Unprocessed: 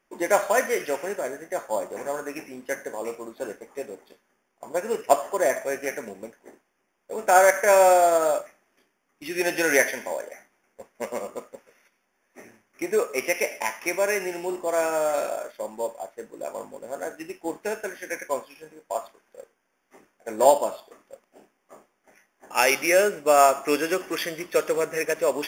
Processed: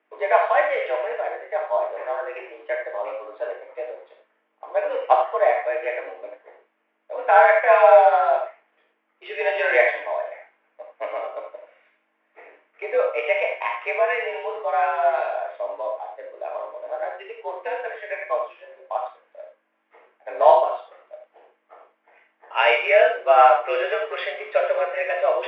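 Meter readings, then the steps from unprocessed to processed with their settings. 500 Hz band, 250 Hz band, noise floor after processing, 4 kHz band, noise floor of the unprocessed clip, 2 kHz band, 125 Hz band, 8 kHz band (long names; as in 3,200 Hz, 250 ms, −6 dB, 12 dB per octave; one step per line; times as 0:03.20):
+3.0 dB, below −10 dB, −71 dBFS, −0.5 dB, −73 dBFS, +3.0 dB, below −35 dB, below −35 dB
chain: mains hum 50 Hz, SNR 28 dB
high-frequency loss of the air 130 metres
single-sideband voice off tune +72 Hz 380–3,400 Hz
reverb whose tail is shaped and stops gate 110 ms flat, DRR 1 dB
level +1.5 dB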